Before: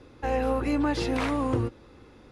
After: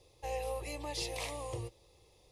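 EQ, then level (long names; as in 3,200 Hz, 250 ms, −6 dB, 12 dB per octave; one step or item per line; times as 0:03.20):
first-order pre-emphasis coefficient 0.8
dynamic equaliser 2,000 Hz, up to +4 dB, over −58 dBFS, Q 1.3
phaser with its sweep stopped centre 610 Hz, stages 4
+3.5 dB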